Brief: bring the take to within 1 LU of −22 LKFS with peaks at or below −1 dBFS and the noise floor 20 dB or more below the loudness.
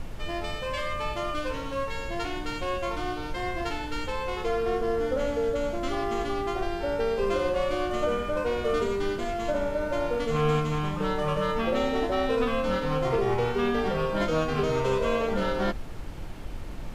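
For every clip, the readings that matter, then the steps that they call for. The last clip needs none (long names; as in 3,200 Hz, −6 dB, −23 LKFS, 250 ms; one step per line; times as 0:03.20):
background noise floor −35 dBFS; target noise floor −49 dBFS; integrated loudness −28.5 LKFS; sample peak −13.0 dBFS; target loudness −22.0 LKFS
→ noise reduction from a noise print 14 dB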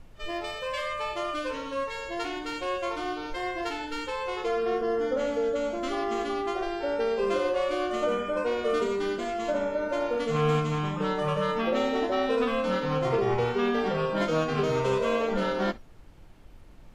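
background noise floor −48 dBFS; target noise floor −49 dBFS
→ noise reduction from a noise print 6 dB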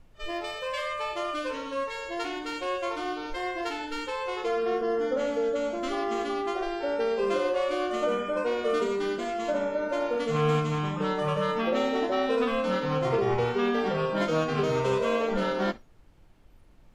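background noise floor −54 dBFS; integrated loudness −28.5 LKFS; sample peak −13.5 dBFS; target loudness −22.0 LKFS
→ level +6.5 dB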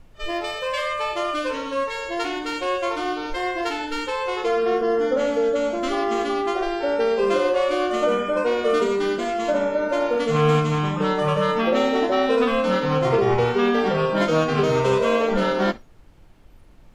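integrated loudness −22.0 LKFS; sample peak −7.0 dBFS; background noise floor −48 dBFS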